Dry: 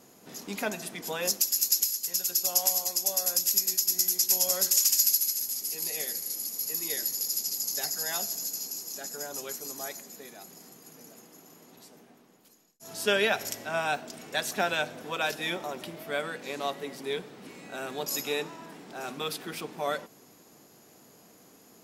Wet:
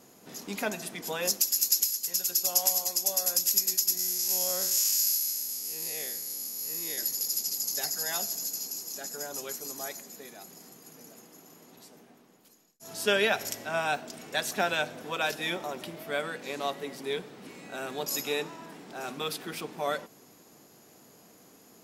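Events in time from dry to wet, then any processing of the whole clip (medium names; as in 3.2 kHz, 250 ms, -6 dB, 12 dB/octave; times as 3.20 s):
3.97–6.98 s: spectral blur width 87 ms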